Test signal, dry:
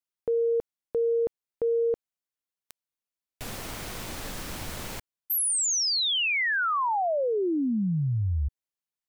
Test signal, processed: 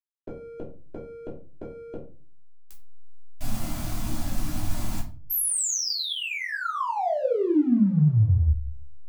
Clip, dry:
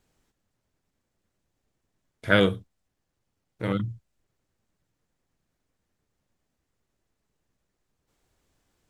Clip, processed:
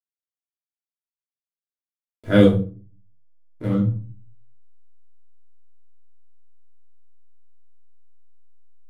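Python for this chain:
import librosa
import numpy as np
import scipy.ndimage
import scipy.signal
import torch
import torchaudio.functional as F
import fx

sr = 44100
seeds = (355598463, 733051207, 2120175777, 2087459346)

p1 = fx.noise_reduce_blind(x, sr, reduce_db=17)
p2 = fx.peak_eq(p1, sr, hz=2100.0, db=-10.5, octaves=2.8)
p3 = fx.level_steps(p2, sr, step_db=21)
p4 = p2 + (p3 * librosa.db_to_amplitude(-3.0))
p5 = fx.backlash(p4, sr, play_db=-43.0)
p6 = fx.room_shoebox(p5, sr, seeds[0], volume_m3=220.0, walls='furnished', distance_m=3.0)
y = p6 * librosa.db_to_amplitude(-3.0)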